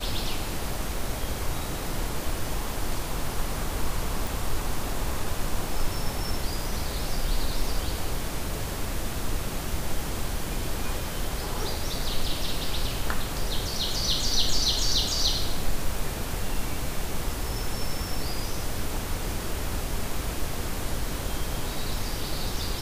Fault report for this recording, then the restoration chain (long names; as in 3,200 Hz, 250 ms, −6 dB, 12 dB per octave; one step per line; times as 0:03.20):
0:04.27: click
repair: click removal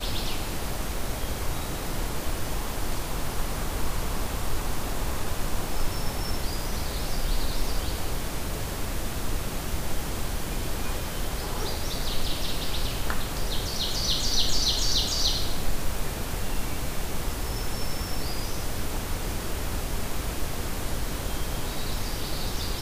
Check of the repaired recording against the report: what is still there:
none of them is left